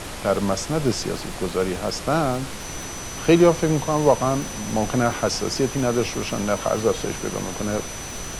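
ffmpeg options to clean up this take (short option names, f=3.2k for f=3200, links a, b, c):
-af "adeclick=t=4,bandreject=f=6k:w=30,afftdn=nr=30:nf=-33"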